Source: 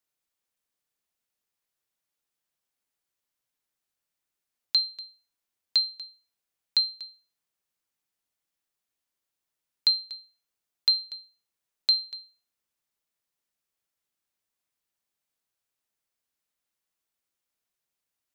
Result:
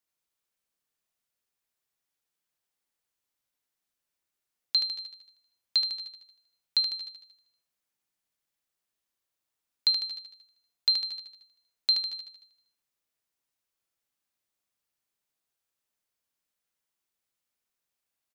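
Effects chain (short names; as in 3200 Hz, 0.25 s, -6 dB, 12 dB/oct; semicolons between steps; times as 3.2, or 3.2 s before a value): feedback echo 76 ms, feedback 54%, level -4.5 dB; gain -2 dB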